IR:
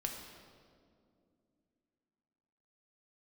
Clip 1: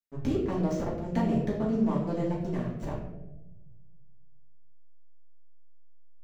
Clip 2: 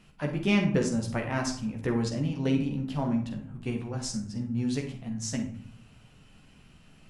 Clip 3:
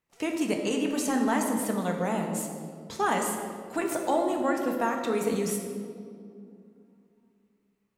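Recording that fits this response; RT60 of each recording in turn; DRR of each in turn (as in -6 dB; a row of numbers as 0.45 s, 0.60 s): 3; 1.0 s, 0.65 s, 2.4 s; -6.0 dB, 1.0 dB, 1.5 dB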